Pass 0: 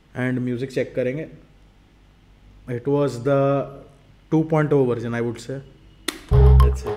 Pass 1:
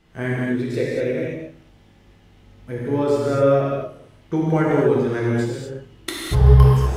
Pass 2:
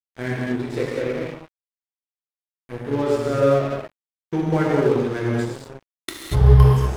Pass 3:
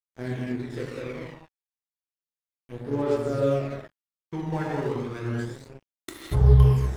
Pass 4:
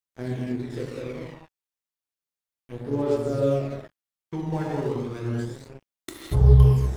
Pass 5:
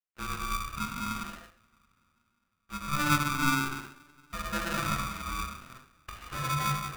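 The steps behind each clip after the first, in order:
gated-style reverb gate 270 ms flat, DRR -5 dB; trim -4.5 dB
crossover distortion -32 dBFS
phaser 0.32 Hz, delay 1.2 ms, feedback 42%; trim -8.5 dB
dynamic bell 1.7 kHz, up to -6 dB, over -47 dBFS, Q 0.87; trim +1.5 dB
two-slope reverb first 0.44 s, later 3.9 s, from -28 dB, DRR 2.5 dB; mistuned SSB +310 Hz 230–2100 Hz; polarity switched at an audio rate 590 Hz; trim -3.5 dB

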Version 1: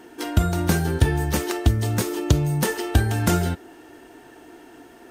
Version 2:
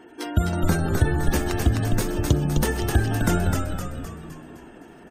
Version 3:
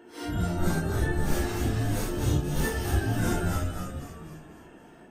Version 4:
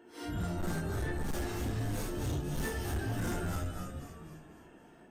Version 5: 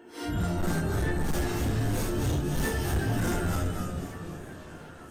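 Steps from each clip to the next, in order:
spectral gate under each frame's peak -30 dB strong; on a send: frequency-shifting echo 257 ms, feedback 51%, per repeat -83 Hz, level -3.5 dB; on the sum: trim -2 dB
phase randomisation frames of 200 ms; trim -4.5 dB
overload inside the chain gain 24 dB; trim -6 dB
repeats whose band climbs or falls 492 ms, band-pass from 180 Hz, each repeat 1.4 oct, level -8 dB; modulated delay 365 ms, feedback 67%, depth 97 cents, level -17.5 dB; trim +6.5 dB

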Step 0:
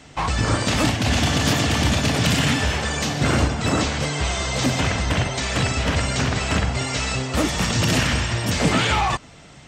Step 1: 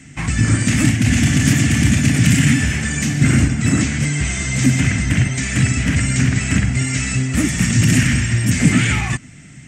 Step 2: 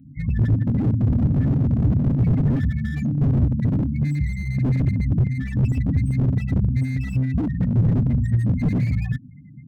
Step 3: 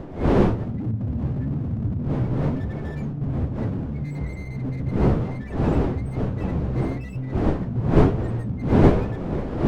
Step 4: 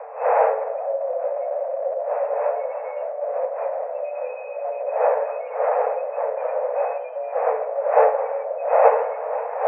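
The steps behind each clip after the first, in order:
graphic EQ 125/250/500/1000/2000/4000/8000 Hz +8/+9/-10/-12/+10/-10/+10 dB
loudest bins only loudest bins 8; static phaser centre 2.4 kHz, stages 4; slew-rate limiter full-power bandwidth 30 Hz; trim -1.5 dB
wind noise 340 Hz -17 dBFS; reverse; upward compressor, threshold -19 dBFS; reverse; flange 1.1 Hz, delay 8.9 ms, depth 7.6 ms, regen +67%; trim -3 dB
frequency shift +440 Hz; rippled Chebyshev low-pass 2.6 kHz, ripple 3 dB; on a send at -12 dB: reverberation RT60 1.8 s, pre-delay 44 ms

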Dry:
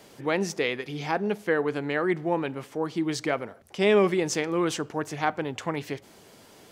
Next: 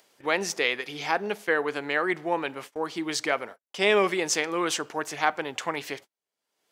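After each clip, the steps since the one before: high-pass 890 Hz 6 dB/octave; gate -46 dBFS, range -47 dB; upward compressor, threshold -43 dBFS; trim +5 dB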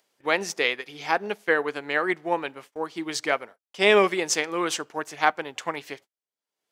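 upward expansion 1.5:1, over -45 dBFS; trim +4 dB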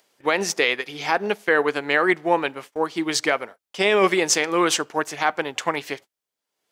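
peak limiter -14 dBFS, peak gain reduction 10 dB; trim +7 dB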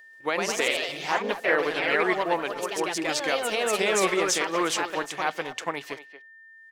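speakerphone echo 230 ms, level -12 dB; ever faster or slower copies 133 ms, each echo +2 st, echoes 3; whistle 1.8 kHz -41 dBFS; trim -6.5 dB

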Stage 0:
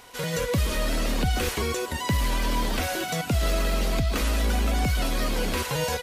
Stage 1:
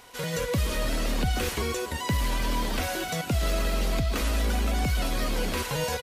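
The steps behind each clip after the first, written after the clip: delay 286 ms -17.5 dB; trim -2 dB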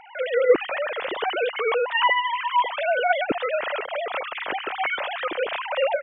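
formants replaced by sine waves; trim +2 dB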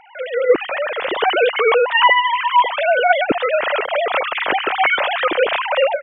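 level rider gain up to 10 dB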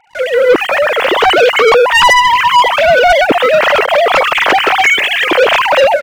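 time-frequency box 4.81–5.29 s, 470–1600 Hz -15 dB; waveshaping leveller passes 3

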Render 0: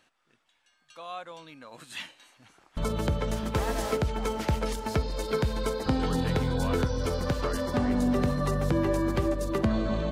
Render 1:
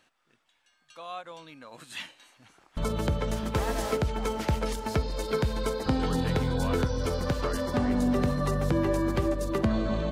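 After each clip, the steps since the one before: endings held to a fixed fall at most 390 dB/s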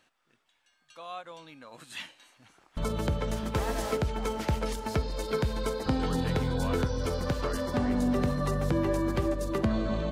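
de-hum 409.7 Hz, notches 25; trim -1.5 dB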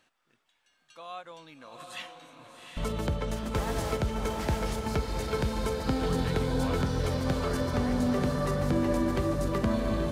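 echo that smears into a reverb 796 ms, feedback 44%, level -4 dB; trim -1 dB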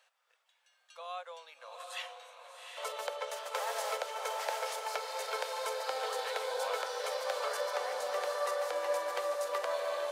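Chebyshev high-pass 500 Hz, order 5

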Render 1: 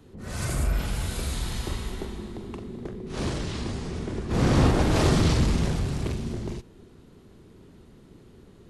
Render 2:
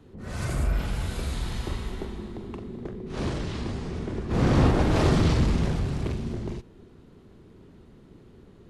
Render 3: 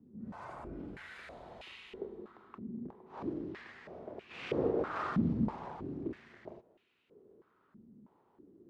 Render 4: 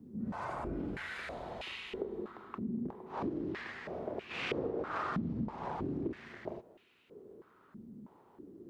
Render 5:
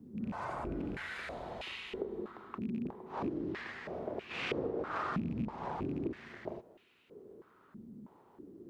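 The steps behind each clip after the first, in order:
treble shelf 5.1 kHz -9.5 dB
step-sequenced band-pass 3.1 Hz 220–2600 Hz
compression 10:1, threshold -40 dBFS, peak gain reduction 15.5 dB; trim +7.5 dB
rattle on loud lows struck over -36 dBFS, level -45 dBFS

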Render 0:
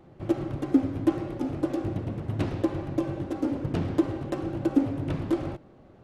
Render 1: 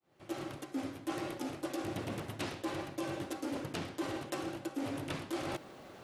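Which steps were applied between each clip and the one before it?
fade-in on the opening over 1.06 s; tilt EQ +4 dB/octave; reverse; compression 10:1, threshold -42 dBFS, peak gain reduction 19.5 dB; reverse; trim +7 dB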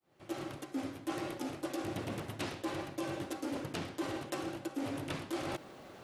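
endings held to a fixed fall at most 550 dB/s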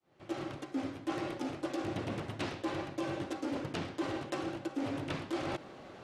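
distance through air 67 m; trim +2 dB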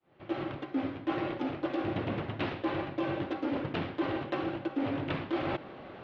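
low-pass 3.5 kHz 24 dB/octave; trim +4 dB

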